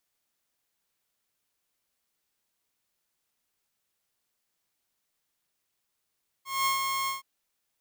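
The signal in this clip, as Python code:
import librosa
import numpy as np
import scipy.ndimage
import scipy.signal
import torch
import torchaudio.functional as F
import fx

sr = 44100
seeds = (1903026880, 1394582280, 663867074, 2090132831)

y = fx.adsr_tone(sr, wave='saw', hz=1080.0, attack_ms=207.0, decay_ms=126.0, sustain_db=-4.5, held_s=0.63, release_ms=141.0, level_db=-20.5)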